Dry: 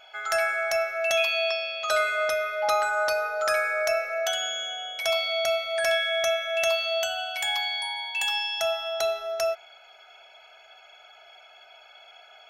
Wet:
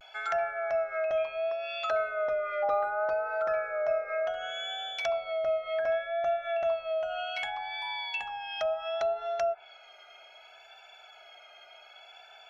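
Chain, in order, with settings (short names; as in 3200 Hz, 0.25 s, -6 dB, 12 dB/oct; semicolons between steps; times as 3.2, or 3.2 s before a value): treble ducked by the level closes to 980 Hz, closed at -23 dBFS; vibrato 0.67 Hz 55 cents; gain -1.5 dB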